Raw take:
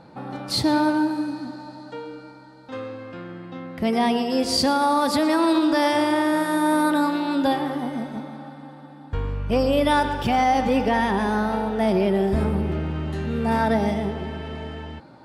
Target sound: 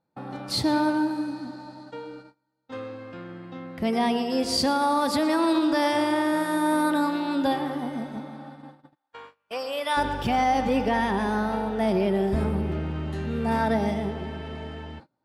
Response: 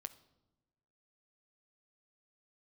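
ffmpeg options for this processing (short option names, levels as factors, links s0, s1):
-filter_complex "[0:a]asplit=3[s0][s1][s2];[s0]afade=t=out:st=8.94:d=0.02[s3];[s1]highpass=770,afade=t=in:st=8.94:d=0.02,afade=t=out:st=9.96:d=0.02[s4];[s2]afade=t=in:st=9.96:d=0.02[s5];[s3][s4][s5]amix=inputs=3:normalize=0,agate=range=0.0398:threshold=0.01:ratio=16:detection=peak,volume=0.708"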